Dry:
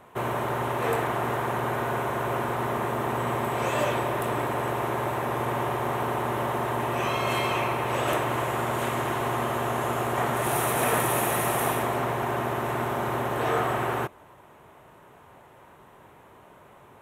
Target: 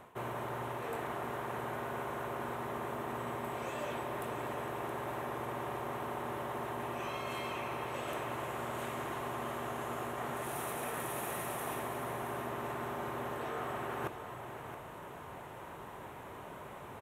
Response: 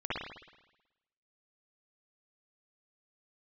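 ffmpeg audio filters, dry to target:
-af "areverse,acompressor=threshold=-41dB:ratio=8,areverse,aecho=1:1:671:0.335,volume=4dB"

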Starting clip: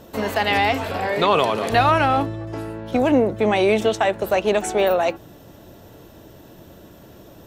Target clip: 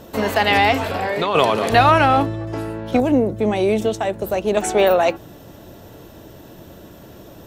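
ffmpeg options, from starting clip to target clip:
ffmpeg -i in.wav -filter_complex "[0:a]asplit=3[link_01][link_02][link_03];[link_01]afade=type=out:start_time=0.87:duration=0.02[link_04];[link_02]acompressor=threshold=-23dB:ratio=3,afade=type=in:start_time=0.87:duration=0.02,afade=type=out:start_time=1.34:duration=0.02[link_05];[link_03]afade=type=in:start_time=1.34:duration=0.02[link_06];[link_04][link_05][link_06]amix=inputs=3:normalize=0,asettb=1/sr,asplit=3[link_07][link_08][link_09];[link_07]atrim=end=3.004[link_10];[link_08]atrim=start=3:end=4.57,asetpts=PTS-STARTPTS,afade=type=in:duration=0.004:curve=qsin,afade=type=out:start_time=1.566:duration=0.004:curve=qsin,equalizer=frequency=1800:width=0.32:gain=-10[link_11];[link_09]atrim=start=4.566[link_12];[link_10][link_11]acrossfade=duration=0.004:curve1=hsin:curve2=qsin[link_13];[link_13][link_12]acrossfade=duration=0.004:curve1=qsin:curve2=hsin,volume=3.5dB" out.wav

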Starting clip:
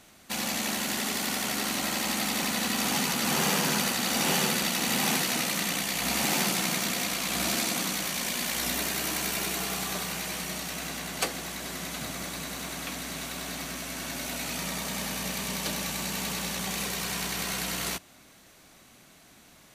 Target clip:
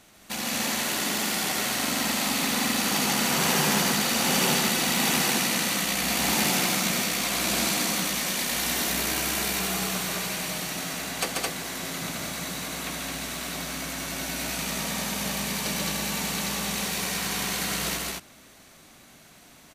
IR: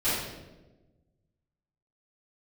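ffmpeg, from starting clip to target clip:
-af "aecho=1:1:137|215.7:0.708|0.794,aeval=exprs='0.299*(cos(1*acos(clip(val(0)/0.299,-1,1)))-cos(1*PI/2))+0.00188*(cos(3*acos(clip(val(0)/0.299,-1,1)))-cos(3*PI/2))+0.00211*(cos(4*acos(clip(val(0)/0.299,-1,1)))-cos(4*PI/2))':channel_layout=same"

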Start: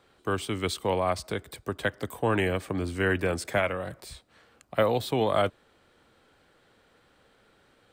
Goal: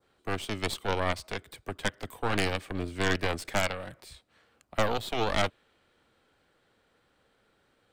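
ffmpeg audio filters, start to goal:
ffmpeg -i in.wav -af "adynamicequalizer=threshold=0.00708:dfrequency=2700:dqfactor=0.91:tfrequency=2700:tqfactor=0.91:attack=5:release=100:ratio=0.375:range=3:mode=boostabove:tftype=bell,aeval=exprs='0.355*(cos(1*acos(clip(val(0)/0.355,-1,1)))-cos(1*PI/2))+0.158*(cos(6*acos(clip(val(0)/0.355,-1,1)))-cos(6*PI/2))+0.0447*(cos(8*acos(clip(val(0)/0.355,-1,1)))-cos(8*PI/2))':channel_layout=same,volume=-6.5dB" out.wav

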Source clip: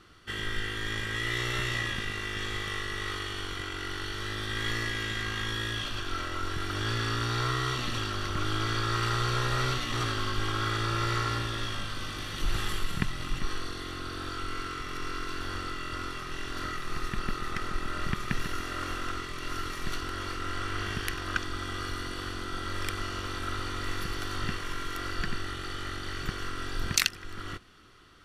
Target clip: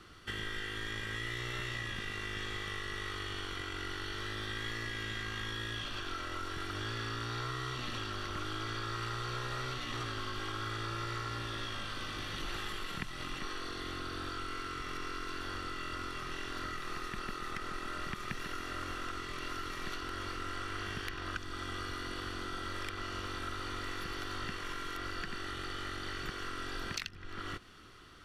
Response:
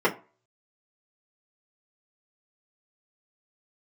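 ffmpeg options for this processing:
-filter_complex "[0:a]acrossover=split=230|5000[link_01][link_02][link_03];[link_01]acompressor=threshold=-44dB:ratio=4[link_04];[link_02]acompressor=threshold=-40dB:ratio=4[link_05];[link_03]acompressor=threshold=-59dB:ratio=4[link_06];[link_04][link_05][link_06]amix=inputs=3:normalize=0,volume=1dB"

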